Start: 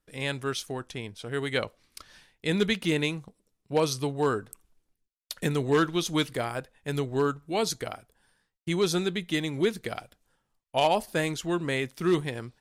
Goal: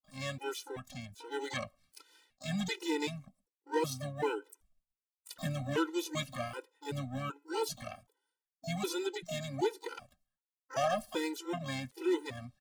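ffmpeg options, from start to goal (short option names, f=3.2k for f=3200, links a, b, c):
-filter_complex "[0:a]agate=range=-33dB:threshold=-58dB:ratio=3:detection=peak,asplit=3[a][b][c];[b]asetrate=33038,aresample=44100,atempo=1.33484,volume=-15dB[d];[c]asetrate=88200,aresample=44100,atempo=0.5,volume=-6dB[e];[a][d][e]amix=inputs=3:normalize=0,afftfilt=real='re*gt(sin(2*PI*1.3*pts/sr)*(1-2*mod(floor(b*sr/1024/260),2)),0)':imag='im*gt(sin(2*PI*1.3*pts/sr)*(1-2*mod(floor(b*sr/1024/260),2)),0)':win_size=1024:overlap=0.75,volume=-6.5dB"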